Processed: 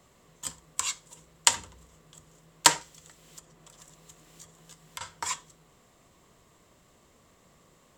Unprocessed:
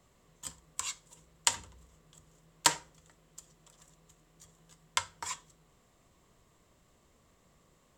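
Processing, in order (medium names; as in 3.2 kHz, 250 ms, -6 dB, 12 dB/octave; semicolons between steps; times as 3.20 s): bass shelf 84 Hz -7.5 dB; 2.81–5.01 s: three bands compressed up and down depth 100%; trim +6.5 dB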